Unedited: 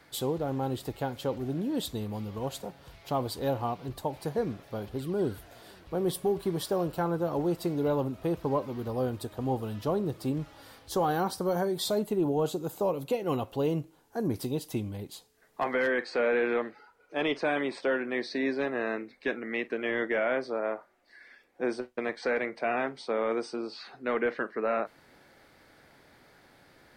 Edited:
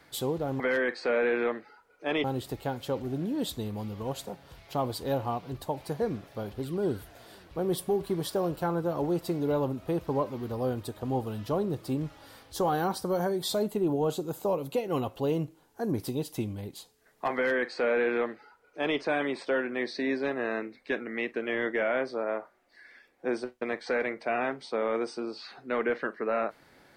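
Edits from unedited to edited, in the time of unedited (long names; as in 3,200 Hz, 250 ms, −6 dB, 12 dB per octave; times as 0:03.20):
0:15.70–0:17.34: duplicate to 0:00.60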